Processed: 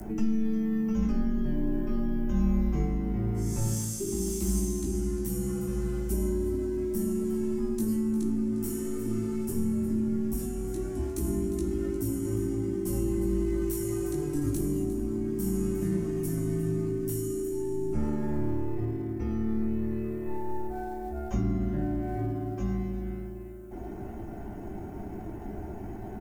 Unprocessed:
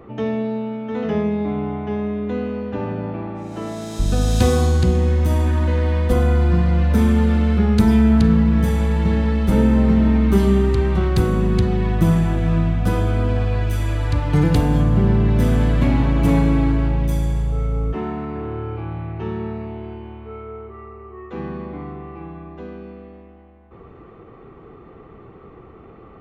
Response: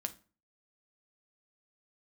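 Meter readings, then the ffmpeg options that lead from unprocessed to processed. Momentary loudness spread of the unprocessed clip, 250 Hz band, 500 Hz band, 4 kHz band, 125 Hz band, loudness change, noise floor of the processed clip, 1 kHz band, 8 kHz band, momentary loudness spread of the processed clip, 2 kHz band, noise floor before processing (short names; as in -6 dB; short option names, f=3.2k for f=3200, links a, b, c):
18 LU, -9.0 dB, -8.0 dB, under -15 dB, -14.5 dB, -12.0 dB, -39 dBFS, -14.0 dB, +1.0 dB, 11 LU, -18.0 dB, -44 dBFS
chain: -filter_complex "[0:a]areverse,acompressor=threshold=-24dB:ratio=10,areverse,aexciter=amount=15.2:drive=4.3:freq=6.1k,aecho=1:1:354:0.178,aeval=exprs='0.335*(cos(1*acos(clip(val(0)/0.335,-1,1)))-cos(1*PI/2))+0.0531*(cos(5*acos(clip(val(0)/0.335,-1,1)))-cos(5*PI/2))':c=same,afreqshift=-440,acrossover=split=170[a][b];[b]acompressor=threshold=-31dB:ratio=5[c];[a][c]amix=inputs=2:normalize=0[d];[1:a]atrim=start_sample=2205[e];[d][e]afir=irnorm=-1:irlink=0,acrossover=split=570|980[f][g][h];[g]acrusher=bits=5:mode=log:mix=0:aa=0.000001[i];[h]flanger=delay=17.5:depth=2.9:speed=0.16[j];[f][i][j]amix=inputs=3:normalize=0"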